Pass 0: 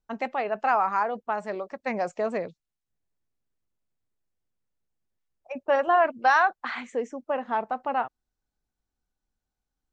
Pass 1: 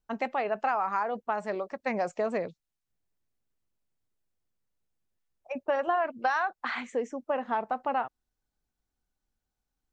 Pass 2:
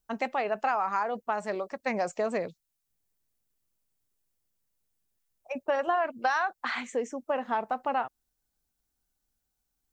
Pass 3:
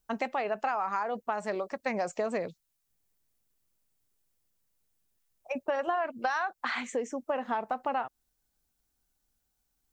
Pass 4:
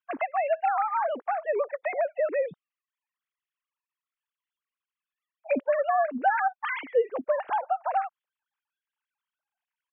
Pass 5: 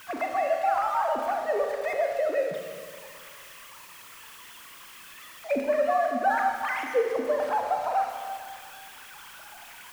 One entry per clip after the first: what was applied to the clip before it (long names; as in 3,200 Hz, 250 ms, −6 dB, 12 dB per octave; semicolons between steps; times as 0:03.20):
downward compressor 6 to 1, threshold −24 dBFS, peak gain reduction 8.5 dB
high-shelf EQ 5,900 Hz +12 dB
downward compressor 2 to 1, threshold −33 dBFS, peak gain reduction 6.5 dB; level +2.5 dB
three sine waves on the formant tracks; in parallel at +1 dB: brickwall limiter −26 dBFS, peak gain reduction 9 dB
converter with a step at zero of −37.5 dBFS; four-comb reverb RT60 2 s, combs from 27 ms, DRR 2.5 dB; level −2 dB